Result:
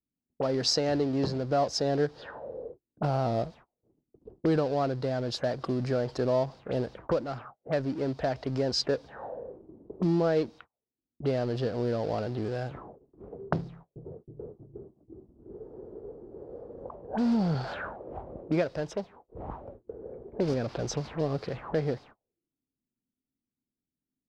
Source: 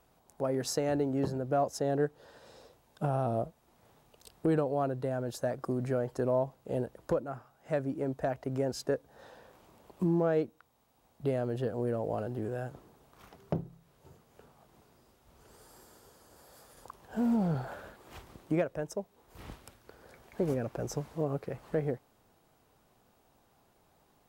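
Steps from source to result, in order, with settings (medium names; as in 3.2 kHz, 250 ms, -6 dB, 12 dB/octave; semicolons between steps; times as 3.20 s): companding laws mixed up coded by mu; gate -51 dBFS, range -36 dB; 13.64–16.89 s: ever faster or slower copies 318 ms, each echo -1 st, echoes 3; touch-sensitive low-pass 260–4800 Hz up, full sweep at -31 dBFS; trim +1.5 dB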